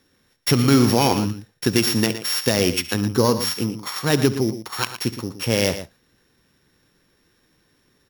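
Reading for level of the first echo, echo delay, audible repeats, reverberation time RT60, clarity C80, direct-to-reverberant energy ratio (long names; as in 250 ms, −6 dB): −17.5 dB, 69 ms, 2, no reverb audible, no reverb audible, no reverb audible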